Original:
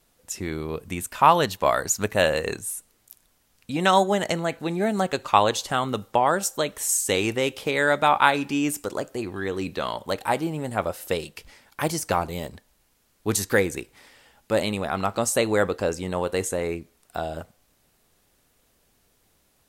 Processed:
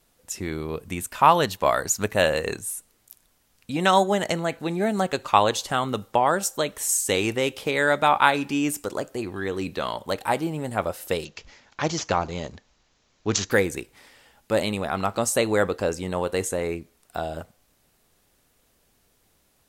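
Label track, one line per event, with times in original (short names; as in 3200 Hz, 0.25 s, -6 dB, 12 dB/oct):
11.250000	13.510000	careless resampling rate divided by 3×, down none, up filtered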